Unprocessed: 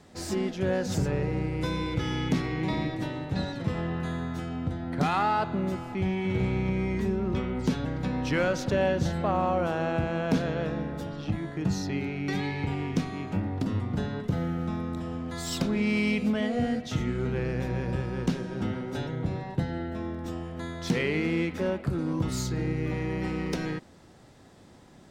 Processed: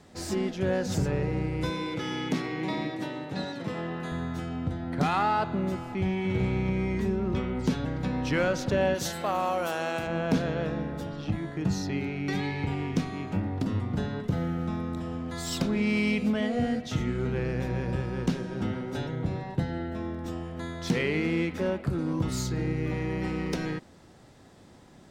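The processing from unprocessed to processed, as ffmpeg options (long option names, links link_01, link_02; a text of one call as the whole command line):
ffmpeg -i in.wav -filter_complex "[0:a]asettb=1/sr,asplit=3[link_01][link_02][link_03];[link_01]atrim=end=1.704[link_04];[link_02]atrim=start=1.7:end=4.12,asetpts=PTS-STARTPTS,afade=type=in:duration=0.004:curve=qsin,afade=type=out:start_time=2.416:duration=0.004:curve=qsin,highpass=200[link_05];[link_03]atrim=start=4.116[link_06];[link_04][link_05]acrossfade=duration=0.004:curve1=hsin:curve2=qsin[link_07];[link_07][link_06]acrossfade=duration=0.004:curve1=qsin:curve2=hsin,asplit=3[link_08][link_09][link_10];[link_08]afade=type=out:start_time=8.94:duration=0.02[link_11];[link_09]aemphasis=mode=production:type=riaa,afade=type=in:start_time=8.94:duration=0.02,afade=type=out:start_time=10.06:duration=0.02[link_12];[link_10]afade=type=in:start_time=10.06:duration=0.02[link_13];[link_11][link_12][link_13]amix=inputs=3:normalize=0" out.wav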